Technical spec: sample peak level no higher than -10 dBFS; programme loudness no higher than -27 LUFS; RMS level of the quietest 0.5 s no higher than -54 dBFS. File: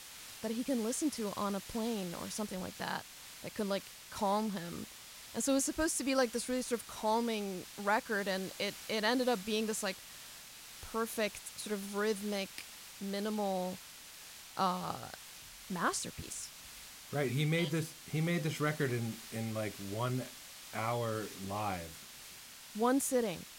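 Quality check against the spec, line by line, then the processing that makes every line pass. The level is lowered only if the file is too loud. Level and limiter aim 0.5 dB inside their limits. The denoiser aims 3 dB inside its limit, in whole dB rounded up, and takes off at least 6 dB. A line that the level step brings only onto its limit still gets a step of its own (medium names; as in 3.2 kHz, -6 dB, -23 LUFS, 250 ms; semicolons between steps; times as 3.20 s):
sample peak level -17.5 dBFS: pass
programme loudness -36.0 LUFS: pass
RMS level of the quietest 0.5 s -52 dBFS: fail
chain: noise reduction 6 dB, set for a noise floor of -52 dBFS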